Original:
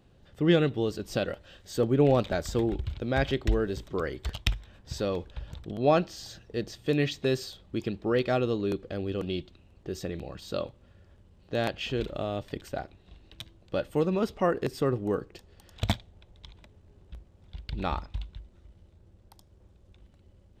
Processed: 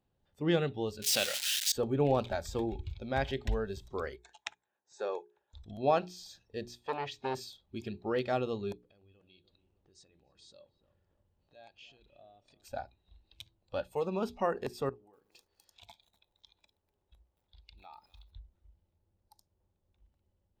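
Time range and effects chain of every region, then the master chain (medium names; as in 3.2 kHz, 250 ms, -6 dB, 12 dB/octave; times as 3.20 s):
1.02–1.72 s: zero-crossing glitches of -21.5 dBFS + frequency weighting D
4.16–5.54 s: cabinet simulation 370–8300 Hz, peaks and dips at 390 Hz +7 dB, 840 Hz +5 dB, 1.6 kHz +6 dB, 3.1 kHz -6 dB, 4.7 kHz -9 dB, 6.8 kHz +6 dB + upward expansion, over -47 dBFS
6.79–7.35 s: treble shelf 5.7 kHz -8 dB + transformer saturation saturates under 880 Hz
8.72–12.63 s: brick-wall FIR low-pass 9.2 kHz + compression 3:1, threshold -49 dBFS + filtered feedback delay 294 ms, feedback 53%, low-pass 1.5 kHz, level -10 dB
14.89–18.32 s: tone controls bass -9 dB, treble +1 dB + compression 5:1, threshold -44 dBFS + bit-crushed delay 246 ms, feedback 35%, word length 9-bit, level -11 dB
whole clip: spectral noise reduction 13 dB; peaking EQ 870 Hz +6.5 dB 0.46 oct; hum notches 60/120/180/240/300/360/420 Hz; trim -6 dB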